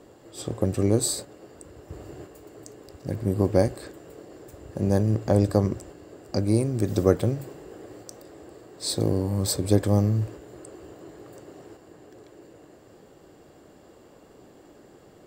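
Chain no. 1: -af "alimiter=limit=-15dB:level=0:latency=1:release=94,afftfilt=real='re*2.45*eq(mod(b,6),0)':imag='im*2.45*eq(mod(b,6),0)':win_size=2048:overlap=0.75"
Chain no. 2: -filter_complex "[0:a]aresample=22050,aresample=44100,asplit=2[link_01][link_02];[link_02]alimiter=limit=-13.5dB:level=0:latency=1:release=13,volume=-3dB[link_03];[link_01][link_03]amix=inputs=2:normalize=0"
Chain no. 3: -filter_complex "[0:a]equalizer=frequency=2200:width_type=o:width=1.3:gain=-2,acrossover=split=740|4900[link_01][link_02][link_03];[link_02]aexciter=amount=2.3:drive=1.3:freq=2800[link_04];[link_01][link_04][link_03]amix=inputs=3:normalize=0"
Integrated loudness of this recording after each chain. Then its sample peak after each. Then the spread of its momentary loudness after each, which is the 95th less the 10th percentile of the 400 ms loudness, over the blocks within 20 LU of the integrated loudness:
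−32.5, −21.0, −25.0 LKFS; −12.0, −2.5, −5.0 dBFS; 21, 22, 22 LU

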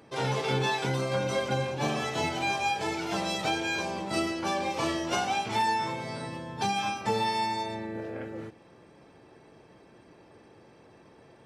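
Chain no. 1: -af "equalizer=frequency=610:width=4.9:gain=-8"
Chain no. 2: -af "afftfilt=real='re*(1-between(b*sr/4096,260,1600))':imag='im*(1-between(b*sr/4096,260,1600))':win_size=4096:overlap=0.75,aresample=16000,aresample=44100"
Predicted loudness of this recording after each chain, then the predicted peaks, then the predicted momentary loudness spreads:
−30.5, −33.5 LKFS; −18.0, −19.0 dBFS; 9, 10 LU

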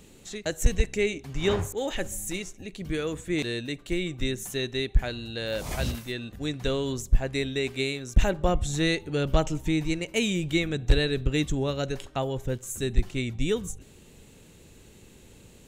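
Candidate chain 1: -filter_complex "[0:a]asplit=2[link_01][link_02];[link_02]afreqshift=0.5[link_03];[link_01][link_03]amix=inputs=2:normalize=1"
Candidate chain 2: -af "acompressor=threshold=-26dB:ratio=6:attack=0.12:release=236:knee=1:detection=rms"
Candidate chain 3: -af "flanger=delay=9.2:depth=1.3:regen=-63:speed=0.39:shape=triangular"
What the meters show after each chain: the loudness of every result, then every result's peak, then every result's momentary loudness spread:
−32.0, −36.0, −33.0 LKFS; −10.5, −23.5, −13.0 dBFS; 8, 11, 7 LU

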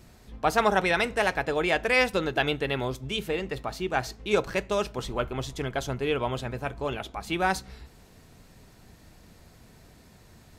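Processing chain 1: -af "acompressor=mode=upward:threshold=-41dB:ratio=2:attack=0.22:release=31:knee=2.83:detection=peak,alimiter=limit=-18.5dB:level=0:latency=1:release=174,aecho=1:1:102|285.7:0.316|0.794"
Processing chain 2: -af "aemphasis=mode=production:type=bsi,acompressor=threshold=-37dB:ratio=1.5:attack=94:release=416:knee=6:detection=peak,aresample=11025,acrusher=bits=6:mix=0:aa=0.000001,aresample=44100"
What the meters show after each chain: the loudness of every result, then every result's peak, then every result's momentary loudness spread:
−29.0, −31.5 LKFS; −13.5, −11.5 dBFS; 21, 8 LU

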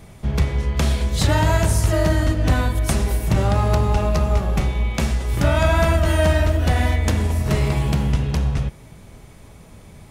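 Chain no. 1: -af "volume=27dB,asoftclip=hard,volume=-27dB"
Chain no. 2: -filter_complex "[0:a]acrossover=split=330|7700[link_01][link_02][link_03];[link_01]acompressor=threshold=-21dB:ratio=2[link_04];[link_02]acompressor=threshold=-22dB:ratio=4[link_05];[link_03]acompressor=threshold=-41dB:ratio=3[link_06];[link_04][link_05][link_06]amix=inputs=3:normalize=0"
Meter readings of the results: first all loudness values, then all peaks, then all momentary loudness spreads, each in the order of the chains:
−29.5, −22.5 LKFS; −27.0, −8.0 dBFS; 15, 3 LU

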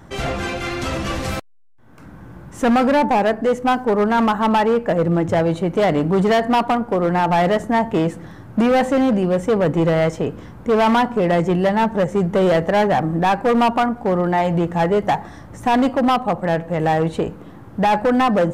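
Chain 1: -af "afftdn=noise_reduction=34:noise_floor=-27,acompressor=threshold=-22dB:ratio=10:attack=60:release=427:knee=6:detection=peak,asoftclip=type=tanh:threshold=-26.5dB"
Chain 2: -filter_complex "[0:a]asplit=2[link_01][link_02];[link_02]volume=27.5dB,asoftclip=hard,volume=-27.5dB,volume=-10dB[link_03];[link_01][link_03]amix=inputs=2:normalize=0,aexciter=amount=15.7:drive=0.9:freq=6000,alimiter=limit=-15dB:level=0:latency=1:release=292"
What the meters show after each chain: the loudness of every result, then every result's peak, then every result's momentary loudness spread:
−30.5, −23.0 LKFS; −26.5, −15.0 dBFS; 6, 6 LU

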